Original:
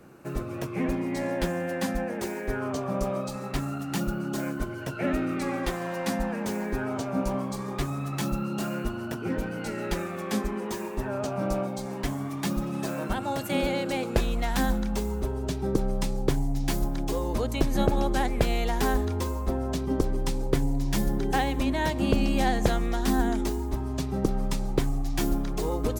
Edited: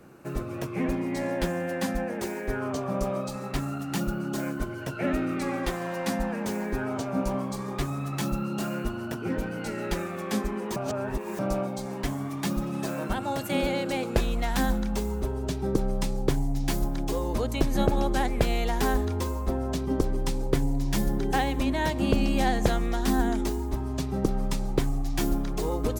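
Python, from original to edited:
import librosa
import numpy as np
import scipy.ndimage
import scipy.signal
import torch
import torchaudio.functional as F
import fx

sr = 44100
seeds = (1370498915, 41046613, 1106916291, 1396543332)

y = fx.edit(x, sr, fx.reverse_span(start_s=10.76, length_s=0.63), tone=tone)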